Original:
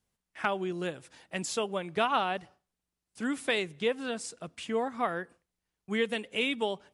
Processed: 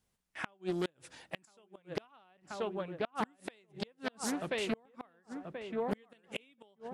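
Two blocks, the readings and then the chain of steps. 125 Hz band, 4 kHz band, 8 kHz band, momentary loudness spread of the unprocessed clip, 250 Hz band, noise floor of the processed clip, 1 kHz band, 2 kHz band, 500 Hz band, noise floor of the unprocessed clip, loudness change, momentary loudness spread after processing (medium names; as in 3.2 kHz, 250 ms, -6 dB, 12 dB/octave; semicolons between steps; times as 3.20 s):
-3.0 dB, -9.5 dB, -5.5 dB, 10 LU, -4.5 dB, -76 dBFS, -10.0 dB, -9.5 dB, -6.5 dB, under -85 dBFS, -7.5 dB, 15 LU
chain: filtered feedback delay 1032 ms, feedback 44%, low-pass 1.5 kHz, level -6 dB; inverted gate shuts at -23 dBFS, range -35 dB; loudspeaker Doppler distortion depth 0.47 ms; trim +1.5 dB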